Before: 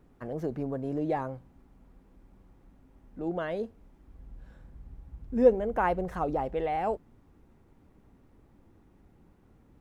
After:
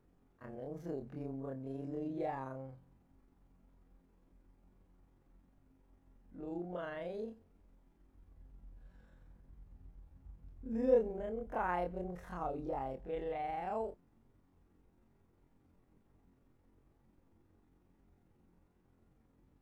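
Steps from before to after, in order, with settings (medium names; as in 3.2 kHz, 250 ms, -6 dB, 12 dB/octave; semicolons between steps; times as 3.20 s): granular stretch 2×, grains 90 ms; trim -8.5 dB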